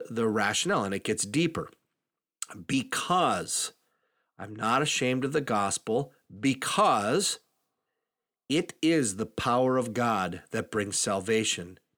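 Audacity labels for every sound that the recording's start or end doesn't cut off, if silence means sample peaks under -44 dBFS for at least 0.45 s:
2.420000	3.700000	sound
4.390000	7.370000	sound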